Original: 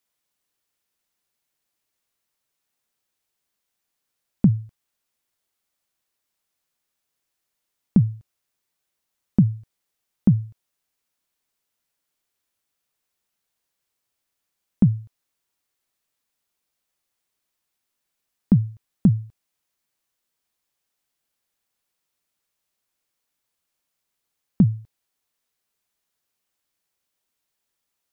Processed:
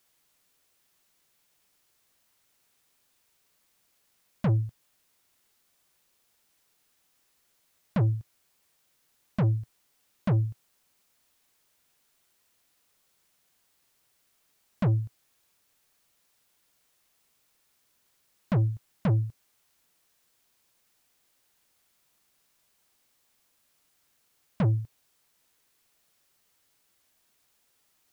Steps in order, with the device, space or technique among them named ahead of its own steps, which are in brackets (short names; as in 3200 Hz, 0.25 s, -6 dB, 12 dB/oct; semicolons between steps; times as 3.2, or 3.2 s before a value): open-reel tape (soft clip -27.5 dBFS, distortion -3 dB; bell 120 Hz +3 dB; white noise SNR 37 dB); gain +4.5 dB